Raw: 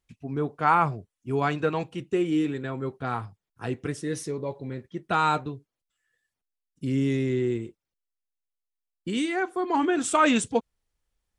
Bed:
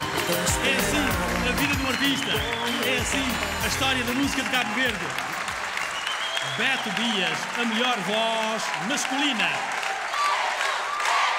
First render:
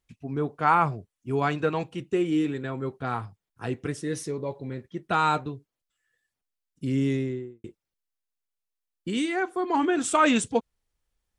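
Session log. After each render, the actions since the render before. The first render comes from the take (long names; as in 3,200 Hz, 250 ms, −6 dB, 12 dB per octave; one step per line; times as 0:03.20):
0:07.05–0:07.64: fade out and dull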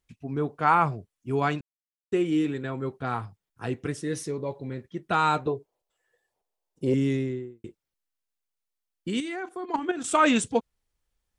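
0:01.61–0:02.12: silence
0:05.47–0:06.94: flat-topped bell 600 Hz +15 dB
0:09.20–0:10.11: output level in coarse steps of 11 dB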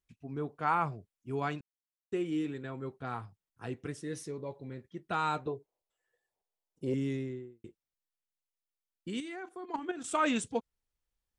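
level −8.5 dB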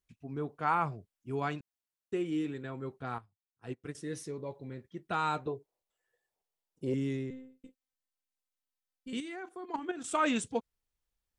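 0:03.18–0:03.95: expander for the loud parts 2.5 to 1, over −48 dBFS
0:07.30–0:09.13: phases set to zero 259 Hz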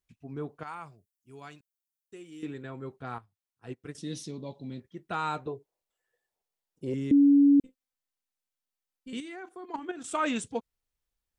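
0:00.63–0:02.43: first-order pre-emphasis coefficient 0.8
0:03.98–0:04.80: drawn EQ curve 110 Hz 0 dB, 230 Hz +9 dB, 440 Hz −5 dB, 670 Hz +2 dB, 1,700 Hz −8 dB, 3,500 Hz +12 dB, 11,000 Hz −3 dB
0:07.11–0:07.60: beep over 283 Hz −15.5 dBFS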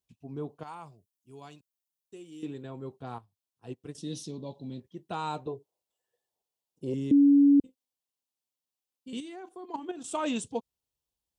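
high-pass filter 67 Hz
flat-topped bell 1,700 Hz −9 dB 1.1 octaves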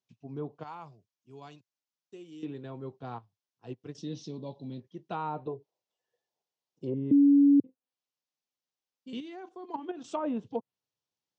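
elliptic band-pass filter 110–6,100 Hz
treble cut that deepens with the level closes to 1,000 Hz, closed at −28 dBFS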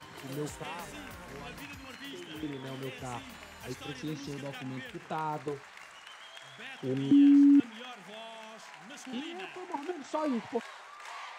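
mix in bed −21.5 dB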